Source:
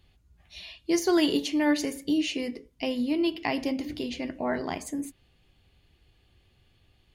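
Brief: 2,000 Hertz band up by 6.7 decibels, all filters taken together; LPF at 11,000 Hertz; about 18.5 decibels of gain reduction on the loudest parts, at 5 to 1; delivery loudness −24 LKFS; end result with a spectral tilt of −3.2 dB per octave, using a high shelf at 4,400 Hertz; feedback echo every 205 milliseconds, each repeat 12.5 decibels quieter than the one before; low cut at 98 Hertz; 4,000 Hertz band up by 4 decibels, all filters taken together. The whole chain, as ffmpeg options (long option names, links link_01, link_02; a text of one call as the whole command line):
ffmpeg -i in.wav -af "highpass=98,lowpass=11000,equalizer=frequency=2000:width_type=o:gain=8,equalizer=frequency=4000:width_type=o:gain=4.5,highshelf=frequency=4400:gain=-5,acompressor=threshold=-40dB:ratio=5,aecho=1:1:205|410|615:0.237|0.0569|0.0137,volume=17.5dB" out.wav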